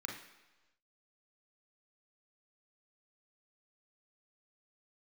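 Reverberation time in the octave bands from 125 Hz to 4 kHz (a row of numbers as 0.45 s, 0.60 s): 1.0 s, 1.0 s, 1.1 s, 1.1 s, 1.1 s, 1.2 s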